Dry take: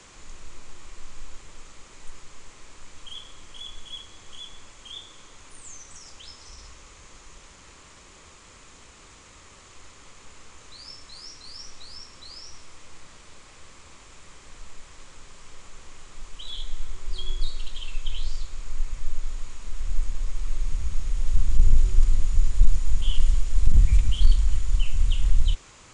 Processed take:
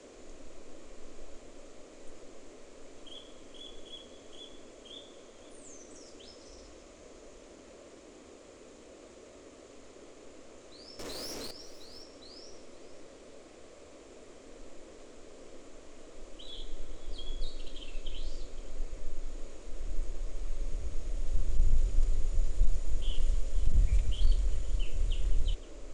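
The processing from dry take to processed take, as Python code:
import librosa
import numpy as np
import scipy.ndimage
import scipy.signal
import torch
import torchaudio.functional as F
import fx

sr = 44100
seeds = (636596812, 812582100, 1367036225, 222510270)

y = fx.dmg_noise_band(x, sr, seeds[0], low_hz=240.0, high_hz=620.0, level_db=-45.0)
y = fx.leveller(y, sr, passes=5, at=(10.99, 11.51))
y = y + 10.0 ** (-18.5 / 20.0) * np.pad(y, (int(512 * sr / 1000.0), 0))[:len(y)]
y = F.gain(torch.from_numpy(y), -9.0).numpy()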